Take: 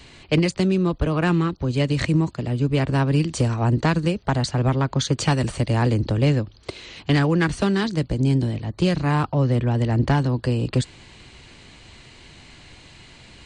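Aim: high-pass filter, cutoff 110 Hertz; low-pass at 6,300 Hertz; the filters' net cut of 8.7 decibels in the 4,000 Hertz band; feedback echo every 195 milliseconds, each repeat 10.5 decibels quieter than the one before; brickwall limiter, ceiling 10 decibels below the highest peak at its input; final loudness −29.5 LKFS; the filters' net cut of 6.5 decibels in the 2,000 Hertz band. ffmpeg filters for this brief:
ffmpeg -i in.wav -af "highpass=110,lowpass=6300,equalizer=frequency=2000:width_type=o:gain=-6.5,equalizer=frequency=4000:width_type=o:gain=-8.5,alimiter=limit=-18.5dB:level=0:latency=1,aecho=1:1:195|390|585:0.299|0.0896|0.0269,volume=-2.5dB" out.wav

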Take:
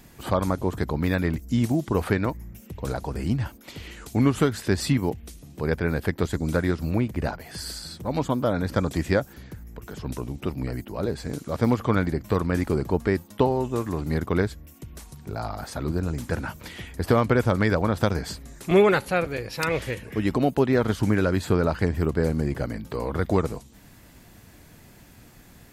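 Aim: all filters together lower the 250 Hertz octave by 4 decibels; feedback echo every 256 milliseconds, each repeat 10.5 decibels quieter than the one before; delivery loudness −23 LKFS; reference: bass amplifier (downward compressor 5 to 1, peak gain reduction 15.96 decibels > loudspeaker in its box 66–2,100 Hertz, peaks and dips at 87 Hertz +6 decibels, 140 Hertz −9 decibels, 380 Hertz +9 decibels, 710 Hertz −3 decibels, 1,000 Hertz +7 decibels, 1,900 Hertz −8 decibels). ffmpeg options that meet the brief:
ffmpeg -i in.wav -af "equalizer=frequency=250:width_type=o:gain=-9,aecho=1:1:256|512|768:0.299|0.0896|0.0269,acompressor=threshold=-34dB:ratio=5,highpass=frequency=66:width=0.5412,highpass=frequency=66:width=1.3066,equalizer=frequency=87:width_type=q:width=4:gain=6,equalizer=frequency=140:width_type=q:width=4:gain=-9,equalizer=frequency=380:width_type=q:width=4:gain=9,equalizer=frequency=710:width_type=q:width=4:gain=-3,equalizer=frequency=1000:width_type=q:width=4:gain=7,equalizer=frequency=1900:width_type=q:width=4:gain=-8,lowpass=frequency=2100:width=0.5412,lowpass=frequency=2100:width=1.3066,volume=13.5dB" out.wav

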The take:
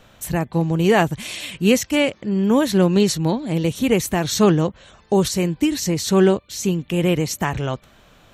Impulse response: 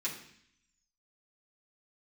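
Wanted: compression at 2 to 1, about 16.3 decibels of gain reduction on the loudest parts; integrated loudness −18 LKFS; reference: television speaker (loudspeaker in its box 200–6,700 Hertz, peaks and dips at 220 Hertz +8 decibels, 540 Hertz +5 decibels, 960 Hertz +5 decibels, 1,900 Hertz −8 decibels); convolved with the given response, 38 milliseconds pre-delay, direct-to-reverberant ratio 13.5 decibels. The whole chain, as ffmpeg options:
-filter_complex "[0:a]acompressor=threshold=-42dB:ratio=2,asplit=2[link_01][link_02];[1:a]atrim=start_sample=2205,adelay=38[link_03];[link_02][link_03]afir=irnorm=-1:irlink=0,volume=-16.5dB[link_04];[link_01][link_04]amix=inputs=2:normalize=0,highpass=frequency=200:width=0.5412,highpass=frequency=200:width=1.3066,equalizer=frequency=220:width_type=q:width=4:gain=8,equalizer=frequency=540:width_type=q:width=4:gain=5,equalizer=frequency=960:width_type=q:width=4:gain=5,equalizer=frequency=1900:width_type=q:width=4:gain=-8,lowpass=frequency=6700:width=0.5412,lowpass=frequency=6700:width=1.3066,volume=15dB"

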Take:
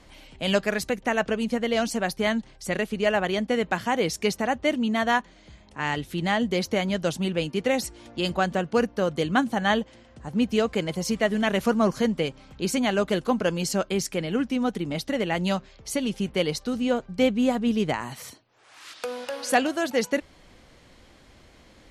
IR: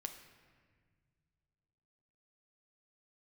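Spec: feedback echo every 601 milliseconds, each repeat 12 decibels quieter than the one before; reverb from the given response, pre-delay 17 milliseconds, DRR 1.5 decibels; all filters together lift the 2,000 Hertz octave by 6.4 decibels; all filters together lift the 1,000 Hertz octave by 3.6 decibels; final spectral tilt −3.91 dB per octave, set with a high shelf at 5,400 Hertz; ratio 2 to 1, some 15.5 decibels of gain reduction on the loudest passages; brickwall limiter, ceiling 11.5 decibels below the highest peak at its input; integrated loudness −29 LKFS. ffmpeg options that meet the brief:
-filter_complex "[0:a]equalizer=frequency=1000:width_type=o:gain=3.5,equalizer=frequency=2000:width_type=o:gain=6,highshelf=frequency=5400:gain=5.5,acompressor=threshold=-42dB:ratio=2,alimiter=level_in=4.5dB:limit=-24dB:level=0:latency=1,volume=-4.5dB,aecho=1:1:601|1202|1803:0.251|0.0628|0.0157,asplit=2[link_01][link_02];[1:a]atrim=start_sample=2205,adelay=17[link_03];[link_02][link_03]afir=irnorm=-1:irlink=0,volume=1dB[link_04];[link_01][link_04]amix=inputs=2:normalize=0,volume=8dB"

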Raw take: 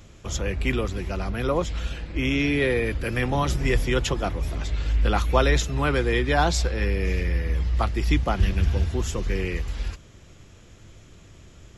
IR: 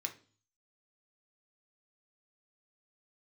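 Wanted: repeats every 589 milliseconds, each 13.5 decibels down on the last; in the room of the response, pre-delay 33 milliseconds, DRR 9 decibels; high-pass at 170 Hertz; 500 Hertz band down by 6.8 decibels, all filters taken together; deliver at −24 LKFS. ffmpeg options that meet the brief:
-filter_complex "[0:a]highpass=170,equalizer=frequency=500:width_type=o:gain=-8.5,aecho=1:1:589|1178:0.211|0.0444,asplit=2[link_01][link_02];[1:a]atrim=start_sample=2205,adelay=33[link_03];[link_02][link_03]afir=irnorm=-1:irlink=0,volume=-9dB[link_04];[link_01][link_04]amix=inputs=2:normalize=0,volume=5dB"

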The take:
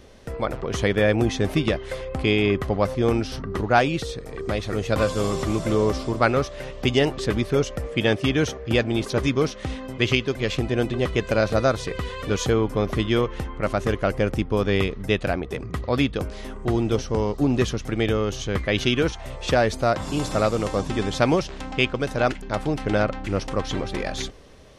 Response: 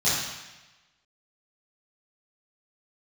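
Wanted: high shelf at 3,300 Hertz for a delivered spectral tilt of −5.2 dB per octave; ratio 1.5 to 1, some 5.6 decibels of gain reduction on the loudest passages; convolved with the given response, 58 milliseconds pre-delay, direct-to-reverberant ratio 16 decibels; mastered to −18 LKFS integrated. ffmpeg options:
-filter_complex "[0:a]highshelf=frequency=3300:gain=3.5,acompressor=threshold=-30dB:ratio=1.5,asplit=2[link_01][link_02];[1:a]atrim=start_sample=2205,adelay=58[link_03];[link_02][link_03]afir=irnorm=-1:irlink=0,volume=-30dB[link_04];[link_01][link_04]amix=inputs=2:normalize=0,volume=10dB"

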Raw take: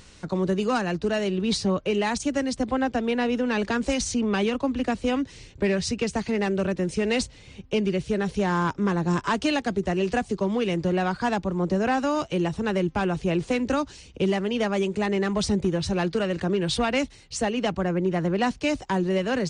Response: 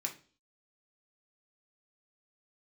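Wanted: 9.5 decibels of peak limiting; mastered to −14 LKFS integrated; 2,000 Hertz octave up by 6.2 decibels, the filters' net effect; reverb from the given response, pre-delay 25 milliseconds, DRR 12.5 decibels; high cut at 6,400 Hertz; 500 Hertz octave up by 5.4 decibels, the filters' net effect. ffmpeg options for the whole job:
-filter_complex "[0:a]lowpass=6400,equalizer=frequency=500:width_type=o:gain=6.5,equalizer=frequency=2000:width_type=o:gain=7.5,alimiter=limit=-18dB:level=0:latency=1,asplit=2[link_01][link_02];[1:a]atrim=start_sample=2205,adelay=25[link_03];[link_02][link_03]afir=irnorm=-1:irlink=0,volume=-13.5dB[link_04];[link_01][link_04]amix=inputs=2:normalize=0,volume=12.5dB"

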